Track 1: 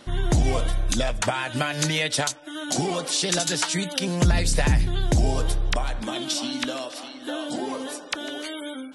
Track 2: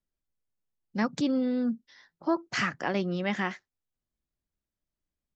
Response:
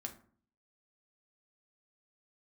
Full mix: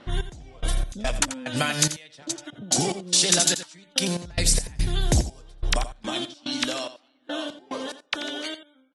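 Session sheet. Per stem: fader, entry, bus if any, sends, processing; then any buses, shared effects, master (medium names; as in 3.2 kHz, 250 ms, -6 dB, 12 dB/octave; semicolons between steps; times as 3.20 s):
-0.5 dB, 0.00 s, no send, echo send -12.5 dB, treble shelf 3.9 kHz +9 dB; trance gate "x..x.x.x" 72 bpm -24 dB
-2.0 dB, 0.00 s, no send, no echo send, steep low-pass 580 Hz 36 dB/octave; compression, threshold -33 dBFS, peak gain reduction 9.5 dB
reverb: none
echo: delay 86 ms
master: level-controlled noise filter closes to 2.2 kHz, open at -21 dBFS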